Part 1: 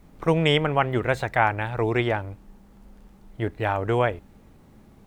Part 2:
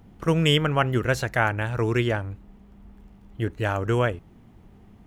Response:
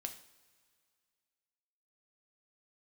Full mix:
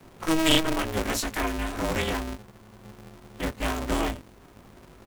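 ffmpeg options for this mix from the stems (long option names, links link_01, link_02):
-filter_complex "[0:a]lowshelf=frequency=650:width_type=q:width=3:gain=-11.5,volume=2.5dB[link_01];[1:a]highshelf=frequency=4000:gain=11.5,adelay=4,volume=1.5dB[link_02];[link_01][link_02]amix=inputs=2:normalize=0,acrossover=split=410|3000[link_03][link_04][link_05];[link_04]acompressor=threshold=-33dB:ratio=4[link_06];[link_03][link_06][link_05]amix=inputs=3:normalize=0,flanger=delay=18:depth=2.6:speed=0.76,aeval=exprs='val(0)*sgn(sin(2*PI*160*n/s))':channel_layout=same"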